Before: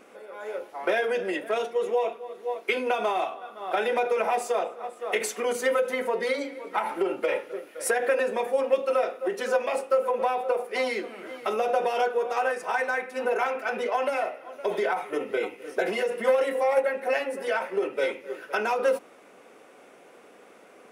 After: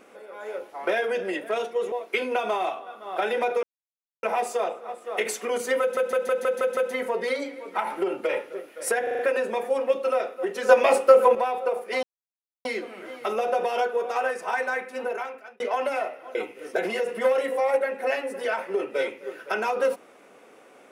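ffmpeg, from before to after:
-filter_complex "[0:a]asplit=18[a][b][c][d][e][f][g][h][i][j][k][l][m][n][o][p][q][r];[a]atrim=end=1.922[s];[b]atrim=start=2.468:end=4.18,asetpts=PTS-STARTPTS,afade=t=out:st=1.708:d=0.004:c=hsin,apad=pad_dur=0.6[t];[c]atrim=start=4.18:end=5.922,asetpts=PTS-STARTPTS,afade=t=in:d=0.004:c=hsin[u];[d]atrim=start=5.758:end=5.922[v];[e]atrim=start=5.758:end=5.922[w];[f]atrim=start=5.758:end=5.922[x];[g]atrim=start=5.758:end=5.922[y];[h]atrim=start=5.758:end=5.922[z];[i]atrim=start=5.758:end=8.062[aa];[j]atrim=start=8.018:end=8.062[ab];[k]atrim=start=8.018:end=8.062[ac];[l]atrim=start=8.018:end=8.062[ad];[m]atrim=start=8.018:end=9.522[ae];[n]atrim=start=9.518:end=10.182,asetpts=PTS-STARTPTS,volume=8.5dB[af];[o]atrim=start=10.178:end=10.86,asetpts=PTS-STARTPTS,afade=t=out:st=0.678:d=0.004:c=hsin,apad=pad_dur=0.62[ag];[p]atrim=start=10.86:end=13.81,asetpts=PTS-STARTPTS,afade=t=in:d=0.004:c=hsin,afade=t=out:st=2.18:d=0.77[ah];[q]atrim=start=13.81:end=14.562,asetpts=PTS-STARTPTS,afade=t=in:d=0.004:c=hsin[ai];[r]atrim=start=15.378[aj];[t][u]concat=n=2:v=0:a=1[ak];[s][ak]acrossfade=d=0.004:c1=hsin:c2=hsin[al];[al][v]acrossfade=d=0.004:c1=hsin:c2=hsin[am];[am][w]acrossfade=d=0.004:c1=hsin:c2=hsin[an];[an][x]acrossfade=d=0.004:c1=hsin:c2=hsin[ao];[ao][y]acrossfade=d=0.004:c1=hsin:c2=hsin[ap];[ap][z]acrossfade=d=0.004:c1=hsin:c2=hsin[aq];[aq][aa]acrossfade=d=0.004:c1=hsin:c2=hsin[ar];[ar][ab]acrossfade=d=0.004:c1=hsin:c2=hsin[as];[as][ac]acrossfade=d=0.004:c1=hsin:c2=hsin[at];[at][ad]acrossfade=d=0.004:c1=hsin:c2=hsin[au];[au][ae]acrossfade=d=0.004:c1=hsin:c2=hsin[av];[av][af]acrossfade=d=0.004:c1=hsin:c2=hsin[aw];[ag][ah][ai]concat=n=3:v=0:a=1[ax];[aw][ax]acrossfade=d=0.004:c1=hsin:c2=hsin[ay];[ay][aj]acrossfade=d=0.004:c1=hsin:c2=hsin"

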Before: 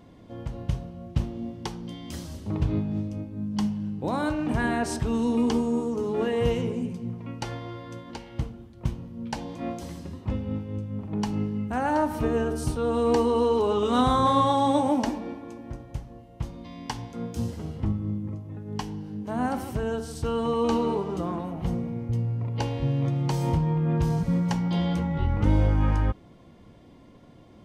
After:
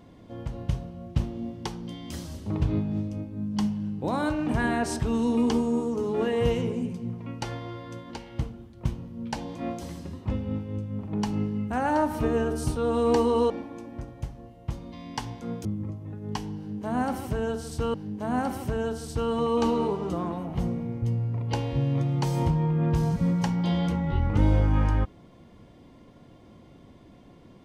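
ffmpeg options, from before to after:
-filter_complex "[0:a]asplit=4[a][b][c][d];[a]atrim=end=13.502[e];[b]atrim=start=15.218:end=17.372[f];[c]atrim=start=18.088:end=20.382[g];[d]atrim=start=19.008[h];[e][f]acrossfade=d=0.004:c1=hsin:c2=hsin[i];[i][g]acrossfade=d=0.004:c1=hsin:c2=hsin[j];[j][h]acrossfade=d=0.004:c1=hsin:c2=hsin"

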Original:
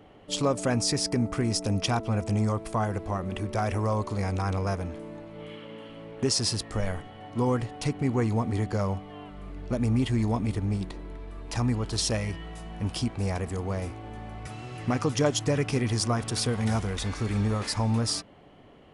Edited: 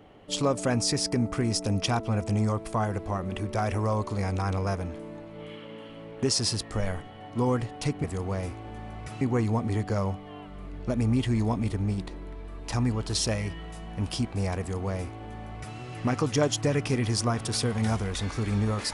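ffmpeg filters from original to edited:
-filter_complex "[0:a]asplit=3[a][b][c];[a]atrim=end=8.042[d];[b]atrim=start=13.428:end=14.602[e];[c]atrim=start=8.038[f];[d][e]acrossfade=d=0.004:c1=hsin:c2=hsin[g];[g][f]acrossfade=d=0.004:c1=hsin:c2=hsin"

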